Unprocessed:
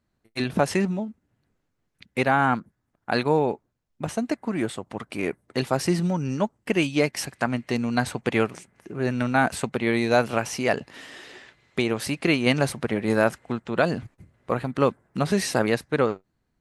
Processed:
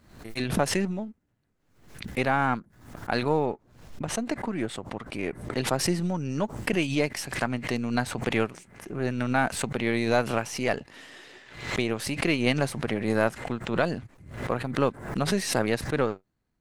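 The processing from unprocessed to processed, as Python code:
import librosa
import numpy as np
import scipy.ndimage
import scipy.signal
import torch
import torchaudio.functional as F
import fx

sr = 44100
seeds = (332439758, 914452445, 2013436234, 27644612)

y = np.where(x < 0.0, 10.0 ** (-3.0 / 20.0) * x, x)
y = fx.high_shelf(y, sr, hz=8800.0, db=-9.0, at=(3.46, 5.79))
y = fx.pre_swell(y, sr, db_per_s=84.0)
y = F.gain(torch.from_numpy(y), -3.0).numpy()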